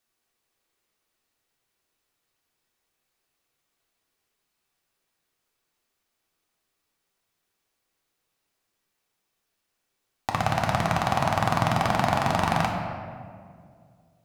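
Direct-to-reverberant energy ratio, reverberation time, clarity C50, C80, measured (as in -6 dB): -1.0 dB, 2.2 s, 3.0 dB, 4.0 dB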